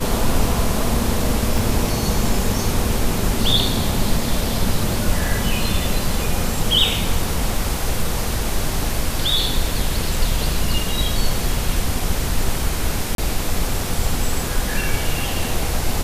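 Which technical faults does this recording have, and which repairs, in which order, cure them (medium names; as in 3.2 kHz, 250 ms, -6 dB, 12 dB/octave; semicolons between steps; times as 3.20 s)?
1.58 s: dropout 2.4 ms
13.15–13.18 s: dropout 32 ms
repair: interpolate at 1.58 s, 2.4 ms; interpolate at 13.15 s, 32 ms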